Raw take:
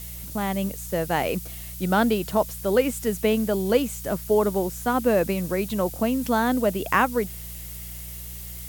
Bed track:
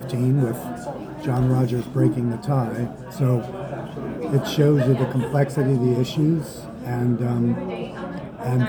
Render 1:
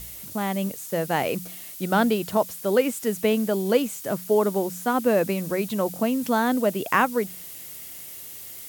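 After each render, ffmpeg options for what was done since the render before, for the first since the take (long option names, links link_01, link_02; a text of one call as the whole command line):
ffmpeg -i in.wav -af "bandreject=frequency=60:width_type=h:width=4,bandreject=frequency=120:width_type=h:width=4,bandreject=frequency=180:width_type=h:width=4" out.wav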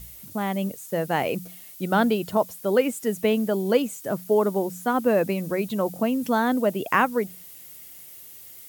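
ffmpeg -i in.wav -af "afftdn=noise_reduction=7:noise_floor=-40" out.wav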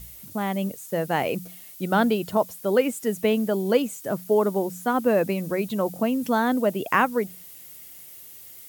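ffmpeg -i in.wav -af anull out.wav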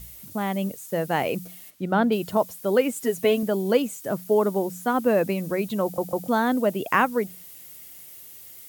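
ffmpeg -i in.wav -filter_complex "[0:a]asplit=3[link_01][link_02][link_03];[link_01]afade=type=out:start_time=1.69:duration=0.02[link_04];[link_02]lowpass=frequency=1900:poles=1,afade=type=in:start_time=1.69:duration=0.02,afade=type=out:start_time=2.11:duration=0.02[link_05];[link_03]afade=type=in:start_time=2.11:duration=0.02[link_06];[link_04][link_05][link_06]amix=inputs=3:normalize=0,asettb=1/sr,asplit=3[link_07][link_08][link_09];[link_07]atrim=end=2.954[link_10];[link_08]atrim=start=2.95:end=3.43,asetpts=PTS-STARTPTS,afade=type=in:duration=0.004:curve=qsin,afade=type=out:start_time=0.476:duration=0.004:curve=qsin,aecho=1:1:7.4:0.65,atrim=end_sample=21168[link_11];[link_09]atrim=start=3.426[link_12];[link_10][link_11]acrossfade=duration=0.004:curve1=hsin:curve2=qsin[link_13];[link_13][link_12]acrossfade=duration=0.004:curve1=qsin:curve2=hsin,asplit=4[link_14][link_15][link_16][link_17];[link_14]atrim=end=5.982[link_18];[link_15]atrim=start=5.828:end=5.982[link_19];[link_16]atrim=start=5.828:end=5.982[link_20];[link_17]atrim=start=6.278[link_21];[link_18][link_19]acrossfade=duration=0.004:curve1=hsin:curve2=hsin[link_22];[link_22][link_20]acrossfade=duration=0.004:curve1=hsin:curve2=hsin[link_23];[link_23][link_21]acrossfade=duration=0.004:curve1=hsin:curve2=hsin" out.wav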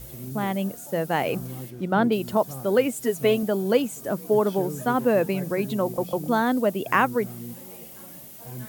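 ffmpeg -i in.wav -i bed.wav -filter_complex "[1:a]volume=-17.5dB[link_01];[0:a][link_01]amix=inputs=2:normalize=0" out.wav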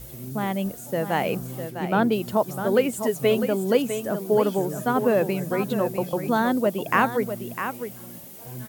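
ffmpeg -i in.wav -af "aecho=1:1:653:0.355" out.wav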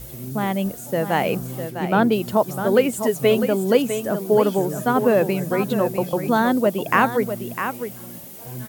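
ffmpeg -i in.wav -af "volume=3.5dB,alimiter=limit=-3dB:level=0:latency=1" out.wav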